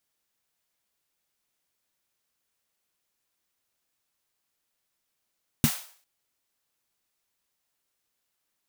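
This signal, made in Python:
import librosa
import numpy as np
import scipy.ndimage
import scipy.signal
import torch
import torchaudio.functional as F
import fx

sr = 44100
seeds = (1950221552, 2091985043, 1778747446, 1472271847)

y = fx.drum_snare(sr, seeds[0], length_s=0.4, hz=150.0, second_hz=230.0, noise_db=-9.0, noise_from_hz=610.0, decay_s=0.09, noise_decay_s=0.48)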